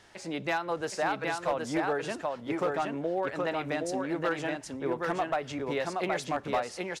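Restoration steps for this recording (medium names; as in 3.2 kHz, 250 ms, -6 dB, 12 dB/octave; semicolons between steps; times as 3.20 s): clip repair -21.5 dBFS; inverse comb 771 ms -3.5 dB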